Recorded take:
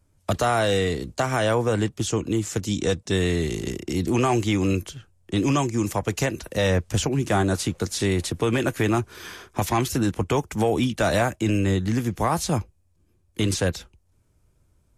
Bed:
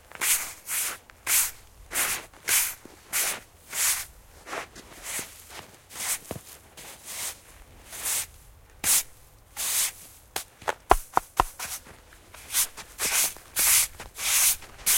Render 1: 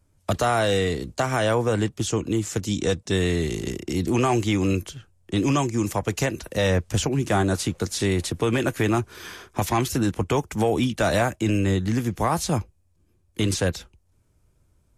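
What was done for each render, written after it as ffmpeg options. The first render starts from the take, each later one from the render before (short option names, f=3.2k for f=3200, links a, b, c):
-af anull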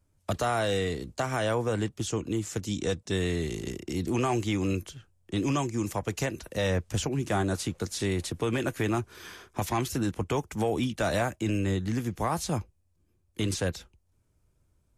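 -af "volume=-6dB"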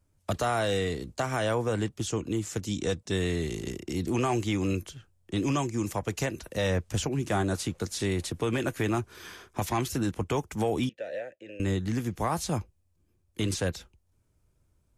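-filter_complex "[0:a]asettb=1/sr,asplit=3[a][b][c];[a]atrim=end=10.894[d];[b]atrim=start=10.89:end=11.6,asetpts=PTS-STARTPTS,afade=t=in:d=0.004:c=qsin,afade=t=out:st=0.706:d=0.004:c=qsin,asplit=3[e][f][g];[e]bandpass=f=530:t=q:w=8,volume=0dB[h];[f]bandpass=f=1.84k:t=q:w=8,volume=-6dB[i];[g]bandpass=f=2.48k:t=q:w=8,volume=-9dB[j];[h][i][j]amix=inputs=3:normalize=0[k];[c]atrim=start=11.596[l];[d][k]acrossfade=d=0.004:c1=hsin:c2=qsin[m];[m][l]acrossfade=d=0.004:c1=qsin:c2=hsin"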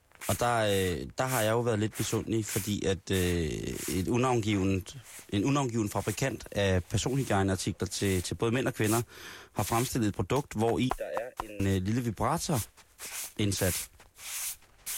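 -filter_complex "[1:a]volume=-14.5dB[a];[0:a][a]amix=inputs=2:normalize=0"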